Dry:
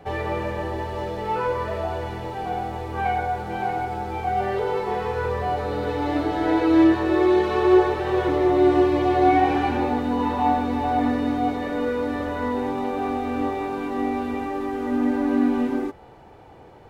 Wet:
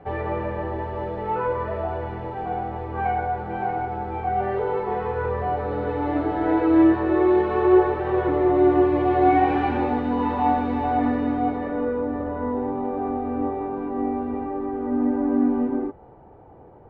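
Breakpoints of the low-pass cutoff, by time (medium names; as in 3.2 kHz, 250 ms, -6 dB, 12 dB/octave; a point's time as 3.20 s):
8.81 s 1.8 kHz
9.63 s 2.7 kHz
10.73 s 2.7 kHz
11.50 s 1.8 kHz
12.08 s 1 kHz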